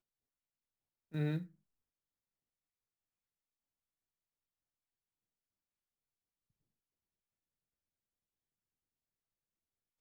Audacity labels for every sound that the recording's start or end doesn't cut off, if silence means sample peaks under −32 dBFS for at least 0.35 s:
1.150000	1.380000	sound